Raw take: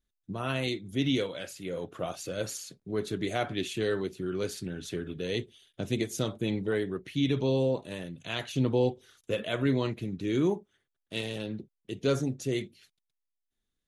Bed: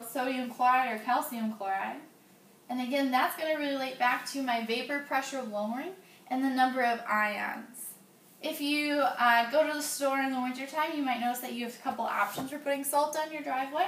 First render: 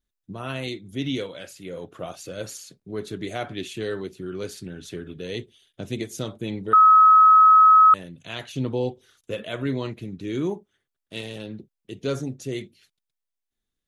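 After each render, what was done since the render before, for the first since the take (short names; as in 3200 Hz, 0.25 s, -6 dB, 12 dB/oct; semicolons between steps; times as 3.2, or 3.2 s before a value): 6.73–7.94 bleep 1280 Hz -9.5 dBFS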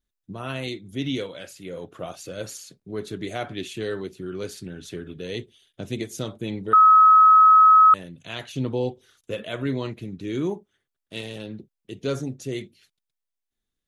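nothing audible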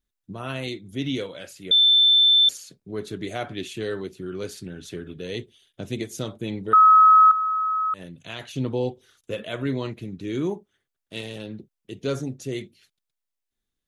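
1.71–2.49 bleep 3540 Hz -13 dBFS; 7.31–8.54 compressor 2.5:1, threshold -29 dBFS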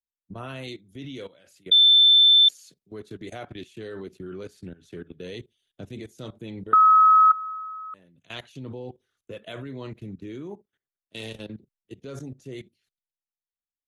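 level quantiser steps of 18 dB; three-band expander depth 40%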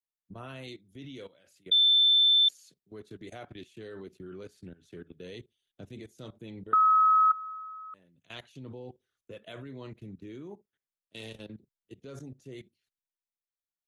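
gain -6.5 dB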